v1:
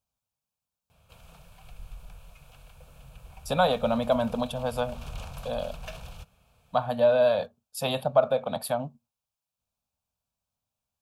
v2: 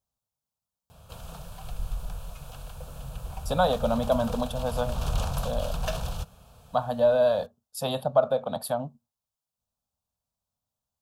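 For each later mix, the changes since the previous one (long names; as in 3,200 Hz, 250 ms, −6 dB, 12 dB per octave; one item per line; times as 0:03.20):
background +11.0 dB
master: add parametric band 2,300 Hz −11 dB 0.58 octaves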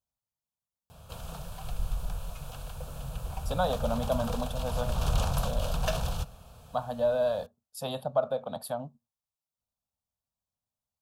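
speech −5.5 dB
reverb: on, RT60 1.6 s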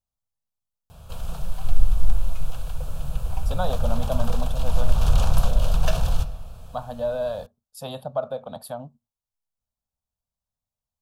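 background: send +11.5 dB
master: remove high-pass filter 100 Hz 6 dB per octave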